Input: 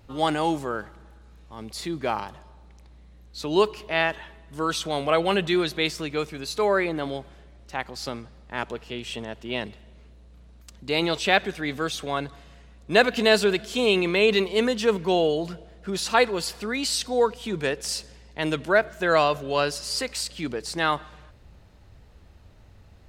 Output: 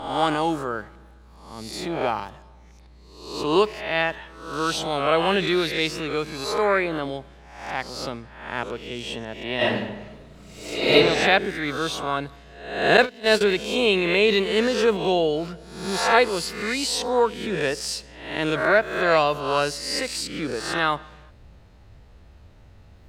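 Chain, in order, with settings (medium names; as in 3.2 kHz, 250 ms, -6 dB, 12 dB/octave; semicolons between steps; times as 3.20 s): reverse spectral sustain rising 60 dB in 0.73 s; 12.97–13.41 s: gate -16 dBFS, range -22 dB; treble shelf 5.8 kHz -4.5 dB; 9.56–10.93 s: reverb throw, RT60 1 s, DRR -10.5 dB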